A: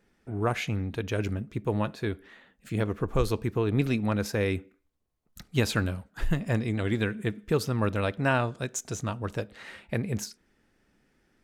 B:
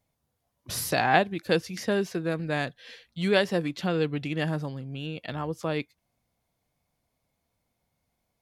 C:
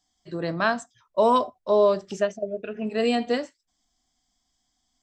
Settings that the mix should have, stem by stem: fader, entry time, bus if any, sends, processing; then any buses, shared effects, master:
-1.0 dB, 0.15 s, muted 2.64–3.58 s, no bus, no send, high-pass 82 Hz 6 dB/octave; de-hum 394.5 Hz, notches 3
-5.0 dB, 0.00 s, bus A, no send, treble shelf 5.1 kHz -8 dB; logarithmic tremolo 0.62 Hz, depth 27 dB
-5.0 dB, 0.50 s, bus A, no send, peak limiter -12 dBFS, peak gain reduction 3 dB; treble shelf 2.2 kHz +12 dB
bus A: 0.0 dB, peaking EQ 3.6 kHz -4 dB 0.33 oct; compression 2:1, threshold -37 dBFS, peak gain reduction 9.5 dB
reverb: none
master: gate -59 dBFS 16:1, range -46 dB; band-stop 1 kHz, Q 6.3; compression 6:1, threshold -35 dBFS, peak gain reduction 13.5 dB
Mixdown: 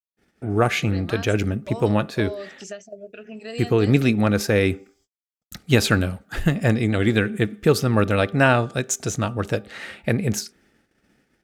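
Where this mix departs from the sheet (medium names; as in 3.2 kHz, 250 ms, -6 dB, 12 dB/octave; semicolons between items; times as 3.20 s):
stem A -1.0 dB -> +9.0 dB; stem B: muted; master: missing compression 6:1, threshold -35 dBFS, peak gain reduction 13.5 dB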